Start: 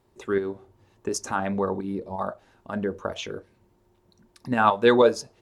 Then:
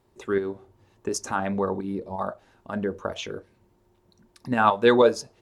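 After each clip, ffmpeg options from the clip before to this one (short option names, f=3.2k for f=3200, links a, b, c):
-af anull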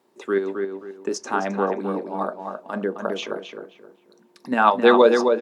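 -filter_complex "[0:a]highpass=f=210:w=0.5412,highpass=f=210:w=1.3066,acrossover=split=6200[a][b];[b]acompressor=threshold=-56dB:ratio=4:attack=1:release=60[c];[a][c]amix=inputs=2:normalize=0,asplit=2[d][e];[e]adelay=264,lowpass=f=2.7k:p=1,volume=-5dB,asplit=2[f][g];[g]adelay=264,lowpass=f=2.7k:p=1,volume=0.29,asplit=2[h][i];[i]adelay=264,lowpass=f=2.7k:p=1,volume=0.29,asplit=2[j][k];[k]adelay=264,lowpass=f=2.7k:p=1,volume=0.29[l];[d][f][h][j][l]amix=inputs=5:normalize=0,volume=3dB"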